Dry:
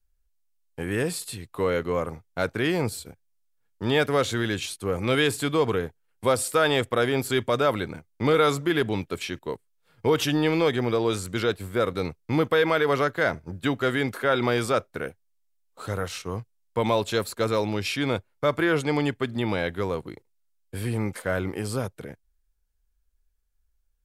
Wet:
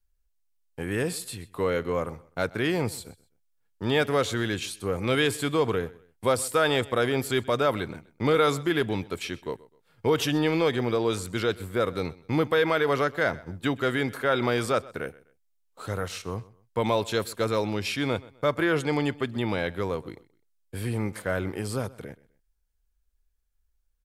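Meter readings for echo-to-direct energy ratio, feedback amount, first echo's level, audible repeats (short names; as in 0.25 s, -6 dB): -20.5 dB, 30%, -21.0 dB, 2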